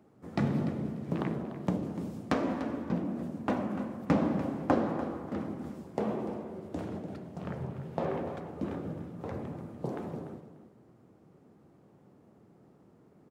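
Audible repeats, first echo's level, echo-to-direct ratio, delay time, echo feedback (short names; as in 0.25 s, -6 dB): 2, -12.5 dB, -12.5 dB, 0.294 s, 18%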